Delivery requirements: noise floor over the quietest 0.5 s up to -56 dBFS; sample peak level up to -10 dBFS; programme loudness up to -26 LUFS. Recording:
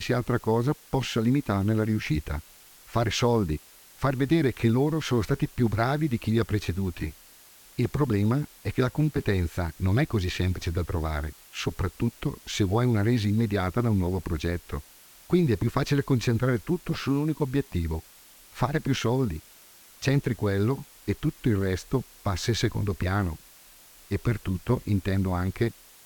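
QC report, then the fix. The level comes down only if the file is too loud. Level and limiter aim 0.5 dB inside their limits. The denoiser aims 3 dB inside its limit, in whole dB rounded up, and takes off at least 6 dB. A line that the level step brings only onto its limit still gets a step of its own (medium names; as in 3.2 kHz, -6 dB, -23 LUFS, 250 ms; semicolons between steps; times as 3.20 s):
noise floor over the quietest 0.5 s -53 dBFS: fail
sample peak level -11.0 dBFS: pass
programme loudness -27.0 LUFS: pass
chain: noise reduction 6 dB, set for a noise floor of -53 dBFS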